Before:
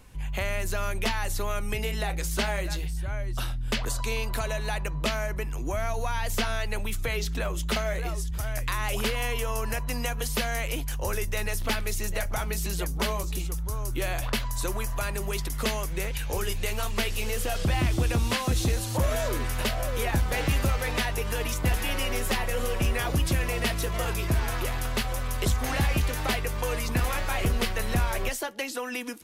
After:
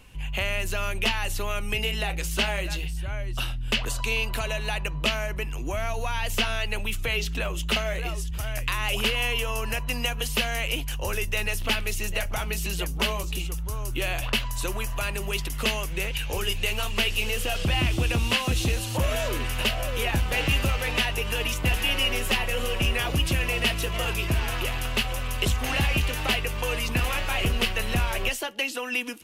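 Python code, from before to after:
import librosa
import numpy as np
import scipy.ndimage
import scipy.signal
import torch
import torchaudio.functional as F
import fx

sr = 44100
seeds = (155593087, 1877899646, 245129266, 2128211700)

y = fx.rattle_buzz(x, sr, strikes_db=-24.0, level_db=-38.0)
y = fx.peak_eq(y, sr, hz=2800.0, db=11.0, octaves=0.42)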